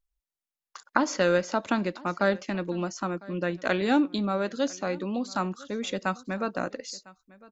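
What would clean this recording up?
inverse comb 1.003 s -22.5 dB

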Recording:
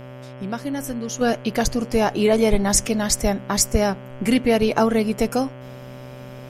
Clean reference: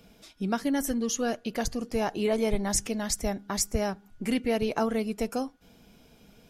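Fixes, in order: de-hum 127.7 Hz, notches 26; notch 580 Hz, Q 30; gain 0 dB, from 1.21 s -9 dB

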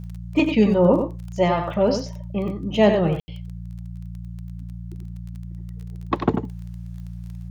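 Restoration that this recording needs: de-click; de-hum 58 Hz, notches 3; room tone fill 3.2–3.28; inverse comb 94 ms -7 dB

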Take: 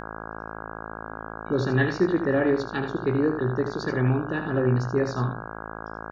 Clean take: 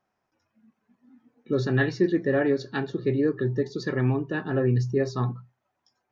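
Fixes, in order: de-hum 54.6 Hz, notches 30; inverse comb 78 ms -8.5 dB

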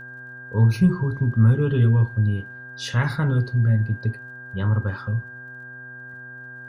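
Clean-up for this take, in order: de-click; de-hum 125.8 Hz, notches 11; notch 1600 Hz, Q 30

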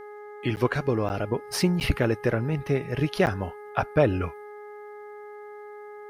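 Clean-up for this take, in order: de-hum 416.6 Hz, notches 5; interpolate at 0.56/1.09/1.8/3.26, 9.4 ms

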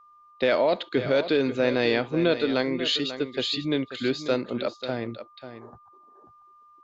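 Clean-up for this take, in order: notch 1200 Hz, Q 30; inverse comb 0.54 s -11.5 dB

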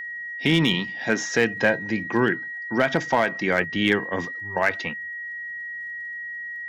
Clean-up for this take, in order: clip repair -10 dBFS; de-click; notch 1900 Hz, Q 30

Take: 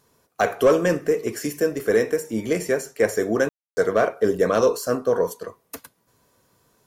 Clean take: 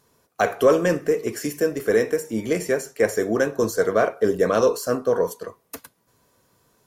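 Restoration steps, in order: clip repair -9 dBFS; room tone fill 3.49–3.77

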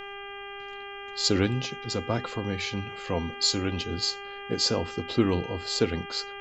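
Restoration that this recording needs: de-hum 400.3 Hz, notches 8; expander -32 dBFS, range -21 dB

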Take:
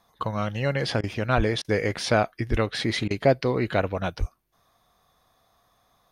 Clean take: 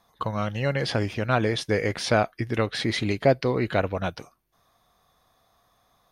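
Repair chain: de-plosive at 1.36/2.5/4.19; interpolate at 1.01/1.62/3.08, 24 ms

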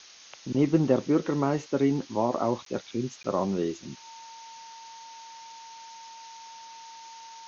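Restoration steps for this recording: notch 910 Hz, Q 30; interpolate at 2.65/3.23, 13 ms; noise print and reduce 23 dB

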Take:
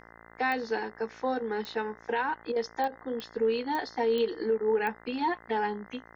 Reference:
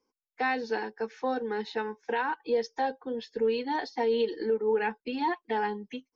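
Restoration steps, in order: de-click; de-hum 56.8 Hz, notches 36; interpolate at 2.52/2.88, 39 ms

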